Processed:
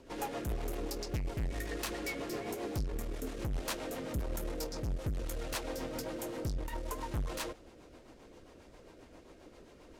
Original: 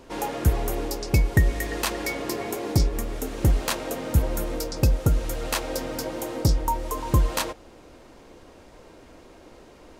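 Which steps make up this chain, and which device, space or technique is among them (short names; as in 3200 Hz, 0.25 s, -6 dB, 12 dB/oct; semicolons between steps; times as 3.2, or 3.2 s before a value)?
overdriven rotary cabinet (tube stage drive 27 dB, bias 0.4; rotary speaker horn 7.5 Hz); gain -3.5 dB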